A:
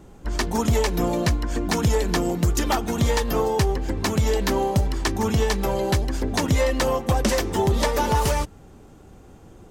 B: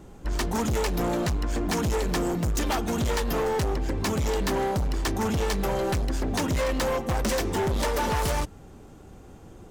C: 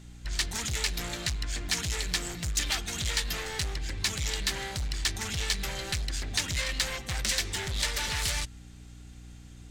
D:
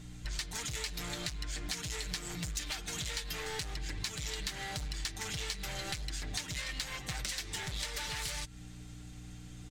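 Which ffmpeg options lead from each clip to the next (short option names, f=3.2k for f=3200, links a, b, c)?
-af "volume=23dB,asoftclip=hard,volume=-23dB"
-af "equalizer=f=250:t=o:w=1:g=-11,equalizer=f=500:t=o:w=1:g=-8,equalizer=f=1k:t=o:w=1:g=-7,equalizer=f=2k:t=o:w=1:g=7,equalizer=f=4k:t=o:w=1:g=10,equalizer=f=8k:t=o:w=1:g=8,aeval=exprs='val(0)+0.00891*(sin(2*PI*60*n/s)+sin(2*PI*2*60*n/s)/2+sin(2*PI*3*60*n/s)/3+sin(2*PI*4*60*n/s)/4+sin(2*PI*5*60*n/s)/5)':c=same,volume=-5.5dB"
-af "aecho=1:1:6.6:0.52,acompressor=threshold=-35dB:ratio=6"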